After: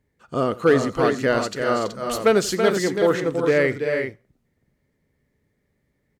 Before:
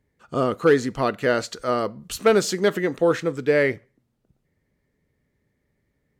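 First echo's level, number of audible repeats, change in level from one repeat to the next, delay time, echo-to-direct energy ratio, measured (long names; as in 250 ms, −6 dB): −19.5 dB, 3, repeats not evenly spaced, 88 ms, −4.0 dB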